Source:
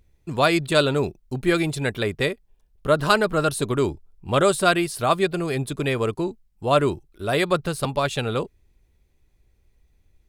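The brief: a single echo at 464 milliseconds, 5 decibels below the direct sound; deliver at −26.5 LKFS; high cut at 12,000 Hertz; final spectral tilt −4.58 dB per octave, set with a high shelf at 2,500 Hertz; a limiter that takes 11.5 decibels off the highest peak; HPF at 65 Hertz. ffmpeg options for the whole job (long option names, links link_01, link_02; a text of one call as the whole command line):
ffmpeg -i in.wav -af "highpass=65,lowpass=12000,highshelf=frequency=2500:gain=3.5,alimiter=limit=-12.5dB:level=0:latency=1,aecho=1:1:464:0.562,volume=-2.5dB" out.wav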